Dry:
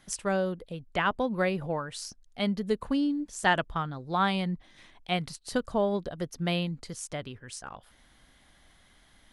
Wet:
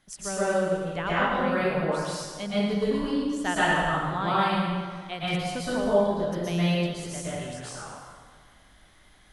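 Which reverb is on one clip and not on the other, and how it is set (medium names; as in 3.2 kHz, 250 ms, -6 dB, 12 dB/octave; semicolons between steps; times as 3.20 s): plate-style reverb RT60 1.7 s, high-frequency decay 0.75×, pre-delay 105 ms, DRR -10 dB; trim -6.5 dB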